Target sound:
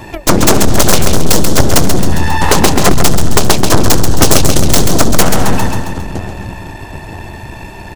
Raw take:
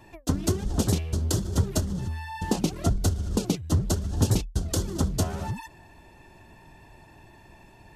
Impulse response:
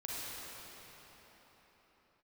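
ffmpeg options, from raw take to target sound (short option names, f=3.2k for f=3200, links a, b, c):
-filter_complex "[0:a]asplit=2[a][b];[b]adelay=964,lowpass=f=1.8k:p=1,volume=-19dB,asplit=2[c][d];[d]adelay=964,lowpass=f=1.8k:p=1,volume=0.34,asplit=2[e][f];[f]adelay=964,lowpass=f=1.8k:p=1,volume=0.34[g];[c][e][g]amix=inputs=3:normalize=0[h];[a][h]amix=inputs=2:normalize=0,aeval=exprs='0.355*(cos(1*acos(clip(val(0)/0.355,-1,1)))-cos(1*PI/2))+0.02*(cos(7*acos(clip(val(0)/0.355,-1,1)))-cos(7*PI/2))+0.1*(cos(8*acos(clip(val(0)/0.355,-1,1)))-cos(8*PI/2))':c=same,asplit=2[i][j];[j]aecho=0:1:135|270|405|540|675|810:0.398|0.191|0.0917|0.044|0.0211|0.0101[k];[i][k]amix=inputs=2:normalize=0,apsyclip=20dB,acontrast=76,volume=-1dB"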